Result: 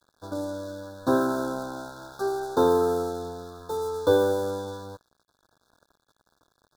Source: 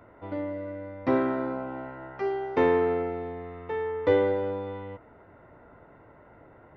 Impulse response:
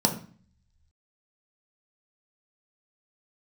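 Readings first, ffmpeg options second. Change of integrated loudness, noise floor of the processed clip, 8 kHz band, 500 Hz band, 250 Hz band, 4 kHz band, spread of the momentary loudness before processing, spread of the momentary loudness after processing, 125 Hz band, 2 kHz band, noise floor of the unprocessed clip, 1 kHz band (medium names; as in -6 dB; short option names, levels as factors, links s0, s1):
+1.5 dB, -76 dBFS, no reading, +1.5 dB, +1.0 dB, +8.5 dB, 15 LU, 16 LU, +0.5 dB, -2.0 dB, -54 dBFS, +2.5 dB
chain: -af "aeval=exprs='sgn(val(0))*max(abs(val(0))-0.00422,0)':c=same,afftfilt=real='re*(1-between(b*sr/4096,1700,3400))':imag='im*(1-between(b*sr/4096,1700,3400))':win_size=4096:overlap=0.75,crystalizer=i=4.5:c=0,volume=1.19"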